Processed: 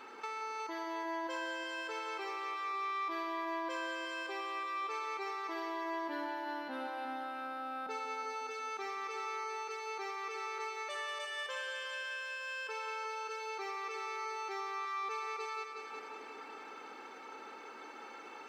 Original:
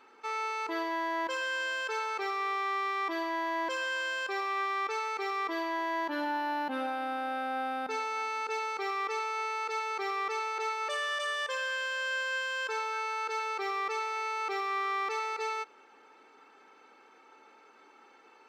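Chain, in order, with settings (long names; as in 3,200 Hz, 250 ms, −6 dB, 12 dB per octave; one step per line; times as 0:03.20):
downward compressor 5 to 1, threshold −49 dBFS, peak gain reduction 17.5 dB
echo machine with several playback heads 182 ms, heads first and second, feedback 61%, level −10 dB
level +7.5 dB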